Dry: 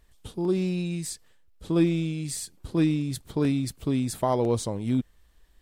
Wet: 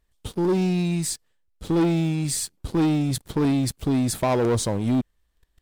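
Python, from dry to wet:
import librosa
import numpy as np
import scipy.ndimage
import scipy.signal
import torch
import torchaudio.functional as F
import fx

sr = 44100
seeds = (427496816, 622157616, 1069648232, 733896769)

y = fx.leveller(x, sr, passes=3)
y = y * librosa.db_to_amplitude(-4.0)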